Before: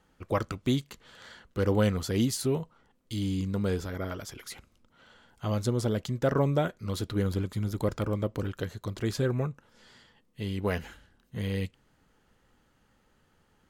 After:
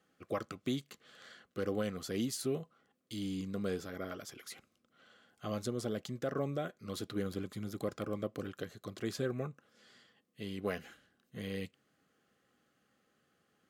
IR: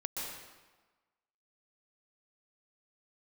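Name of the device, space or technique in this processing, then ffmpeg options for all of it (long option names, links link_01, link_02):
PA system with an anti-feedback notch: -af "highpass=170,asuperstop=centerf=920:order=12:qfactor=5.3,alimiter=limit=-19dB:level=0:latency=1:release=317,volume=-5.5dB"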